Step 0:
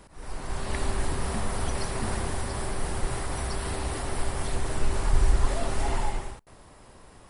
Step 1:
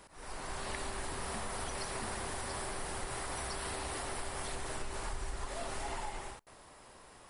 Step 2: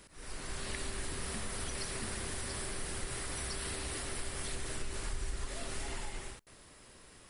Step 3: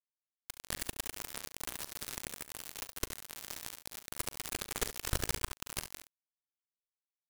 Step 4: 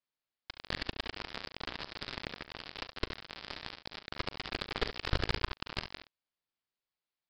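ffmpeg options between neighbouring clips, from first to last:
ffmpeg -i in.wav -af "lowshelf=frequency=320:gain=-11,acompressor=threshold=-34dB:ratio=6,volume=-1dB" out.wav
ffmpeg -i in.wav -af "equalizer=frequency=840:width_type=o:width=1.3:gain=-11.5,volume=2.5dB" out.wav
ffmpeg -i in.wav -filter_complex "[0:a]acrusher=bits=4:mix=0:aa=0.000001,asplit=2[link_01][link_02];[link_02]aecho=0:1:39|70:0.126|0.266[link_03];[link_01][link_03]amix=inputs=2:normalize=0,volume=2.5dB" out.wav
ffmpeg -i in.wav -filter_complex "[0:a]aresample=11025,aresample=44100,asplit=2[link_01][link_02];[link_02]asoftclip=type=tanh:threshold=-29dB,volume=-3.5dB[link_03];[link_01][link_03]amix=inputs=2:normalize=0,volume=1dB" out.wav

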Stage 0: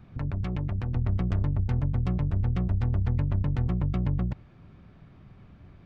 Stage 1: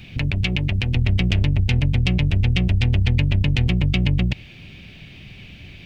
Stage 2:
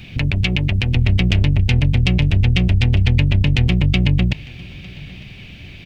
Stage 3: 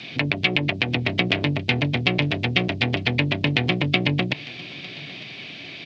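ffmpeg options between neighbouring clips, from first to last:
ffmpeg -i in.wav -filter_complex "[0:a]highshelf=frequency=1800:width_type=q:width=3:gain=13.5,asplit=2[link_01][link_02];[link_02]alimiter=limit=-20.5dB:level=0:latency=1:release=86,volume=-2dB[link_03];[link_01][link_03]amix=inputs=2:normalize=0,volume=3.5dB" out.wav
ffmpeg -i in.wav -af "aecho=1:1:903:0.0794,volume=3.5dB" out.wav
ffmpeg -i in.wav -filter_complex "[0:a]crystalizer=i=4.5:c=0,acrossover=split=3400[link_01][link_02];[link_02]acompressor=threshold=-29dB:ratio=4:attack=1:release=60[link_03];[link_01][link_03]amix=inputs=2:normalize=0,highpass=frequency=160:width=0.5412,highpass=frequency=160:width=1.3066,equalizer=frequency=190:width_type=q:width=4:gain=-8,equalizer=frequency=300:width_type=q:width=4:gain=4,equalizer=frequency=430:width_type=q:width=4:gain=3,equalizer=frequency=670:width_type=q:width=4:gain=7,equalizer=frequency=1100:width_type=q:width=4:gain=4,equalizer=frequency=2800:width_type=q:width=4:gain=-5,lowpass=frequency=4700:width=0.5412,lowpass=frequency=4700:width=1.3066" out.wav

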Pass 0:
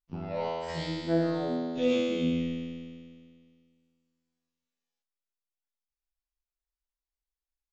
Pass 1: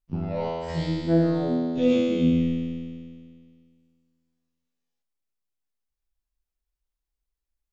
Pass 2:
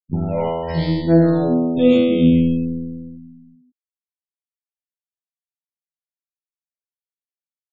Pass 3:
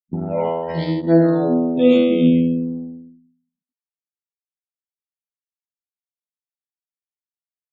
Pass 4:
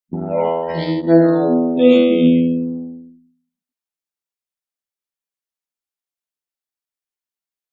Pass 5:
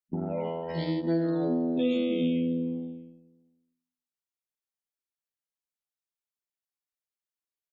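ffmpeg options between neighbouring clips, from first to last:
ffmpeg -i in.wav -af "lowshelf=frequency=360:gain=11" out.wav
ffmpeg -i in.wav -af "afftfilt=real='re*gte(hypot(re,im),0.0112)':imag='im*gte(hypot(re,im),0.0112)':win_size=1024:overlap=0.75,volume=7.5dB" out.wav
ffmpeg -i in.wav -af "highpass=190,anlmdn=158,volume=1dB" out.wav
ffmpeg -i in.wav -af "equalizer=frequency=110:width=1.2:gain=-9,volume=3.5dB" out.wav
ffmpeg -i in.wav -filter_complex "[0:a]acrossover=split=340|2600[link_01][link_02][link_03];[link_01]acompressor=threshold=-20dB:ratio=4[link_04];[link_02]acompressor=threshold=-28dB:ratio=4[link_05];[link_03]acompressor=threshold=-35dB:ratio=4[link_06];[link_04][link_05][link_06]amix=inputs=3:normalize=0,aecho=1:1:318|636:0.0891|0.0285,volume=-7dB" out.wav

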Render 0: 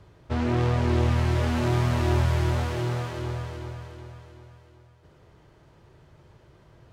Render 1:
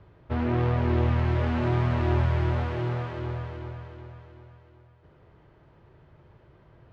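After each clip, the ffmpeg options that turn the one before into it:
ffmpeg -i in.wav -af "lowpass=2700,volume=-1dB" out.wav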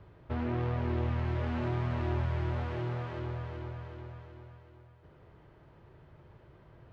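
ffmpeg -i in.wav -af "acompressor=threshold=-39dB:ratio=1.5,volume=-1dB" out.wav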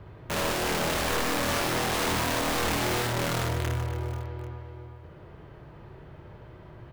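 ffmpeg -i in.wav -filter_complex "[0:a]aeval=exprs='(mod(39.8*val(0)+1,2)-1)/39.8':channel_layout=same,asplit=2[link_01][link_02];[link_02]aecho=0:1:60|150|285|487.5|791.2:0.631|0.398|0.251|0.158|0.1[link_03];[link_01][link_03]amix=inputs=2:normalize=0,volume=7.5dB" out.wav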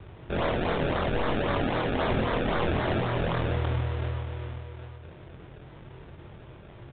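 ffmpeg -i in.wav -filter_complex "[0:a]acrusher=samples=30:mix=1:aa=0.000001:lfo=1:lforange=30:lforate=3.8,asplit=2[link_01][link_02];[link_02]adelay=23,volume=-7dB[link_03];[link_01][link_03]amix=inputs=2:normalize=0,aresample=8000,aresample=44100" out.wav

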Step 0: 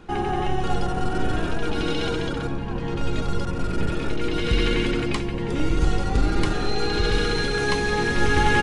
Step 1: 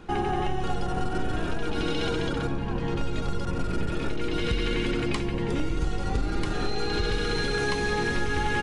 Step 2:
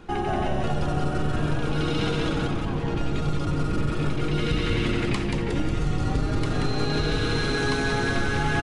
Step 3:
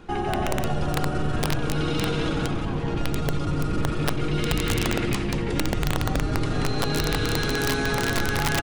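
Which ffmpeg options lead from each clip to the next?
ffmpeg -i in.wav -af "acompressor=threshold=-22dB:ratio=6" out.wav
ffmpeg -i in.wav -filter_complex "[0:a]asplit=7[link_01][link_02][link_03][link_04][link_05][link_06][link_07];[link_02]adelay=182,afreqshift=-150,volume=-3.5dB[link_08];[link_03]adelay=364,afreqshift=-300,volume=-10.4dB[link_09];[link_04]adelay=546,afreqshift=-450,volume=-17.4dB[link_10];[link_05]adelay=728,afreqshift=-600,volume=-24.3dB[link_11];[link_06]adelay=910,afreqshift=-750,volume=-31.2dB[link_12];[link_07]adelay=1092,afreqshift=-900,volume=-38.2dB[link_13];[link_01][link_08][link_09][link_10][link_11][link_12][link_13]amix=inputs=7:normalize=0" out.wav
ffmpeg -i in.wav -af "aeval=exprs='(mod(5.31*val(0)+1,2)-1)/5.31':channel_layout=same" out.wav

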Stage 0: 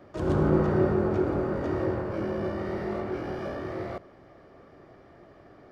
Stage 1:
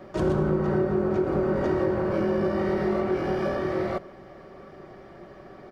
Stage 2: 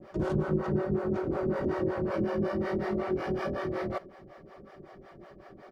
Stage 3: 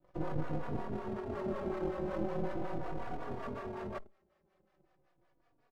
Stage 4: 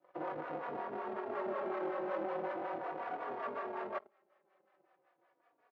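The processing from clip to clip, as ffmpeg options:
ffmpeg -i in.wav -af "aecho=1:1:5.3:0.47,acompressor=threshold=-26dB:ratio=12,volume=6dB" out.wav
ffmpeg -i in.wav -filter_complex "[0:a]acrossover=split=450[link_01][link_02];[link_01]aeval=exprs='val(0)*(1-1/2+1/2*cos(2*PI*5.4*n/s))':channel_layout=same[link_03];[link_02]aeval=exprs='val(0)*(1-1/2-1/2*cos(2*PI*5.4*n/s))':channel_layout=same[link_04];[link_03][link_04]amix=inputs=2:normalize=0" out.wav
ffmpeg -i in.wav -filter_complex "[0:a]afwtdn=0.0158,aeval=exprs='max(val(0),0)':channel_layout=same,asplit=2[link_01][link_02];[link_02]adelay=3.5,afreqshift=-0.4[link_03];[link_01][link_03]amix=inputs=2:normalize=1" out.wav
ffmpeg -i in.wav -filter_complex "[0:a]asplit=2[link_01][link_02];[link_02]volume=35.5dB,asoftclip=hard,volume=-35.5dB,volume=-3.5dB[link_03];[link_01][link_03]amix=inputs=2:normalize=0,highpass=520,lowpass=2300,volume=1dB" out.wav

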